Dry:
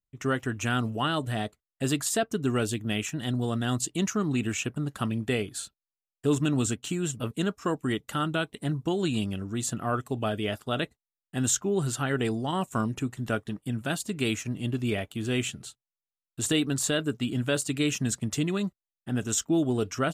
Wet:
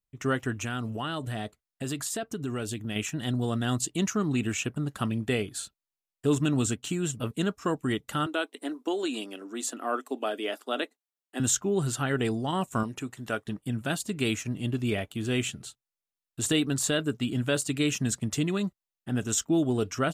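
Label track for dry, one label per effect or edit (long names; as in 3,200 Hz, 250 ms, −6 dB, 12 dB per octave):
0.610000	2.960000	downward compressor 3 to 1, threshold −30 dBFS
8.260000	11.400000	elliptic high-pass filter 260 Hz, stop band 50 dB
12.830000	13.470000	low-shelf EQ 240 Hz −11 dB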